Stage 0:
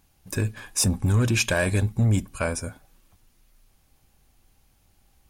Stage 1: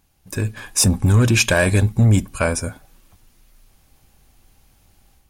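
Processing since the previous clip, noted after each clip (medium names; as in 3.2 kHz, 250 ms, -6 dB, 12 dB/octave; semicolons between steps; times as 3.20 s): level rider gain up to 7 dB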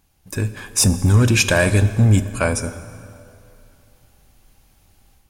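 plate-style reverb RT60 2.8 s, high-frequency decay 0.7×, DRR 12 dB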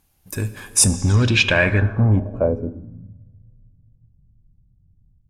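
low-pass sweep 13 kHz -> 140 Hz, 0.66–3.19 s; trim -2.5 dB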